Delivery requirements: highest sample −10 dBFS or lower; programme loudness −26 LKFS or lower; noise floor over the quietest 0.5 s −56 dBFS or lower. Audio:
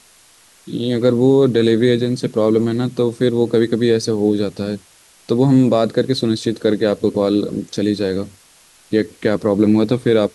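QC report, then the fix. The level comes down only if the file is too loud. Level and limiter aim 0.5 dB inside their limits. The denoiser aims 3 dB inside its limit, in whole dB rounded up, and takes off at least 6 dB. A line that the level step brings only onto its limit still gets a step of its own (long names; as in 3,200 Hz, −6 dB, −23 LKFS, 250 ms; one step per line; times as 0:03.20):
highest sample −3.5 dBFS: out of spec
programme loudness −17.0 LKFS: out of spec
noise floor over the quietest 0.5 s −50 dBFS: out of spec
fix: level −9.5 dB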